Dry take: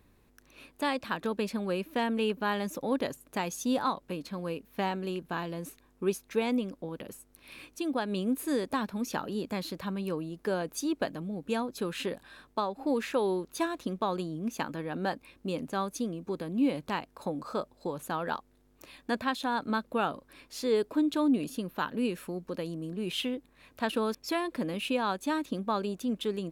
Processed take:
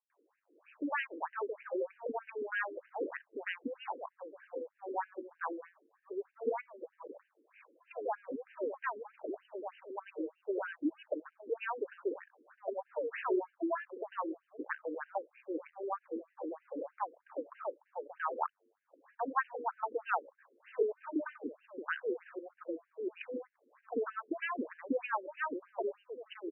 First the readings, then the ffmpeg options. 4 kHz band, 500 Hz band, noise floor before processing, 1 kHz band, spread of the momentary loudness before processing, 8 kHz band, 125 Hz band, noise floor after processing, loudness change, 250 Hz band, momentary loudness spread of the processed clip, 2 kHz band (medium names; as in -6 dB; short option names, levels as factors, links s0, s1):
under -15 dB, -5.0 dB, -65 dBFS, -5.0 dB, 9 LU, under -35 dB, under -35 dB, -80 dBFS, -7.0 dB, -11.5 dB, 10 LU, -3.0 dB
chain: -filter_complex "[0:a]highpass=f=99:w=0.5412,highpass=f=99:w=1.3066,acrossover=split=160|520[s0][s1][s2];[s2]adelay=100[s3];[s0]adelay=150[s4];[s4][s1][s3]amix=inputs=3:normalize=0,adynamicsmooth=sensitivity=6.5:basefreq=1800,lowpass=3200,afftfilt=real='re*between(b*sr/1024,360*pow(2200/360,0.5+0.5*sin(2*PI*3.2*pts/sr))/1.41,360*pow(2200/360,0.5+0.5*sin(2*PI*3.2*pts/sr))*1.41)':imag='im*between(b*sr/1024,360*pow(2200/360,0.5+0.5*sin(2*PI*3.2*pts/sr))/1.41,360*pow(2200/360,0.5+0.5*sin(2*PI*3.2*pts/sr))*1.41)':win_size=1024:overlap=0.75,volume=1.41"